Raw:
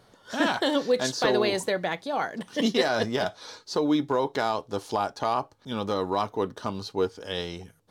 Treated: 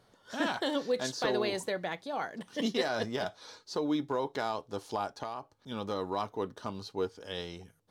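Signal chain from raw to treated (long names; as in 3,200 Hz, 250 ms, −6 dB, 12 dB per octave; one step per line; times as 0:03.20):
0:05.22–0:05.70: downward compressor, threshold −28 dBFS, peak gain reduction 7.5 dB
level −7 dB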